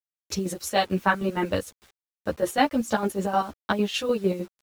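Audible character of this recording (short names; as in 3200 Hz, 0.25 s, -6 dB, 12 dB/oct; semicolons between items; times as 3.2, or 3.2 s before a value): chopped level 6.6 Hz, depth 65%, duty 50%; a quantiser's noise floor 8-bit, dither none; a shimmering, thickened sound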